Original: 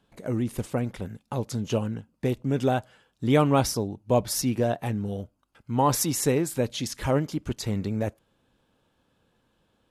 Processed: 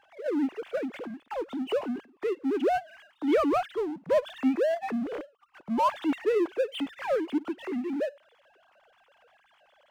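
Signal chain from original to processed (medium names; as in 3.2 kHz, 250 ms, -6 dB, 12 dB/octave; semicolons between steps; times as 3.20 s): formants replaced by sine waves; power-law waveshaper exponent 0.7; trim -5.5 dB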